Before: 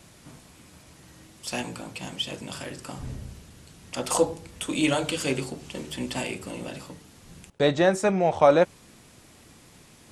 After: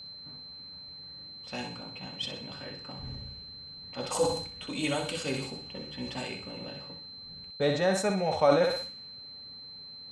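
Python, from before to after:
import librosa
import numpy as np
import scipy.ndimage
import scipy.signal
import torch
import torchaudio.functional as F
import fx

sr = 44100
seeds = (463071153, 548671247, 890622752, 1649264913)

p1 = fx.env_lowpass(x, sr, base_hz=1600.0, full_db=-21.5)
p2 = fx.notch_comb(p1, sr, f0_hz=340.0)
p3 = p2 + 10.0 ** (-37.0 / 20.0) * np.sin(2.0 * np.pi * 4100.0 * np.arange(len(p2)) / sr)
p4 = p3 + fx.echo_thinned(p3, sr, ms=63, feedback_pct=39, hz=360.0, wet_db=-7.0, dry=0)
p5 = fx.sustainer(p4, sr, db_per_s=78.0)
y = p5 * librosa.db_to_amplitude(-5.5)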